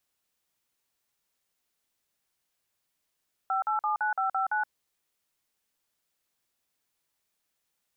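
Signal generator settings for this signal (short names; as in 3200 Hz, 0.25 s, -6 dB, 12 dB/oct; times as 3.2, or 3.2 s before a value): DTMF "5879559", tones 0.122 s, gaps 47 ms, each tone -27.5 dBFS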